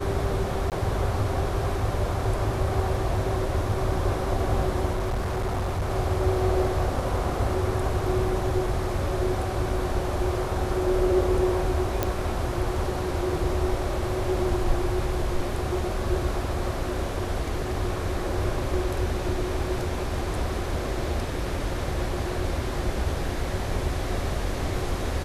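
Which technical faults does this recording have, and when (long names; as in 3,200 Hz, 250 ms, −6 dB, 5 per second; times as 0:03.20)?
0:00.70–0:00.72: drop-out 18 ms
0:04.92–0:05.90: clipping −23 dBFS
0:12.03: click −9 dBFS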